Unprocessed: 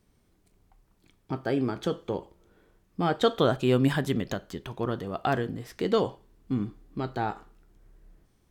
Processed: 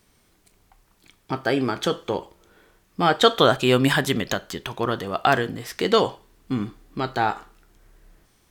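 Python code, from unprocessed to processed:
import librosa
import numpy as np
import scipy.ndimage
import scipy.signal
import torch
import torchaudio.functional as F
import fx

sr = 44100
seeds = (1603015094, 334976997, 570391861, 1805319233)

y = fx.tilt_shelf(x, sr, db=-5.5, hz=640.0)
y = y * librosa.db_to_amplitude(7.0)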